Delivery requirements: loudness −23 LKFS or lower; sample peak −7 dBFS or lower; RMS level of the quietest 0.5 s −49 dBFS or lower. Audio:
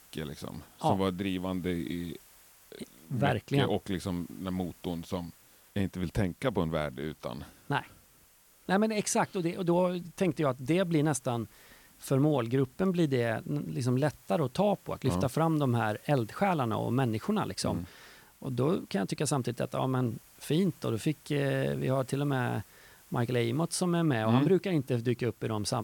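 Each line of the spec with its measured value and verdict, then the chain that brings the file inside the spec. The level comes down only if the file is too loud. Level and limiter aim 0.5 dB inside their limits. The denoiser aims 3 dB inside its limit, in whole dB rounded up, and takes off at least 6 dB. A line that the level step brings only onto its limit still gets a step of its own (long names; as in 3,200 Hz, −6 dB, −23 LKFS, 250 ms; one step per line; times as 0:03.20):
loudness −30.5 LKFS: in spec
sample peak −13.5 dBFS: in spec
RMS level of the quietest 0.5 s −61 dBFS: in spec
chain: no processing needed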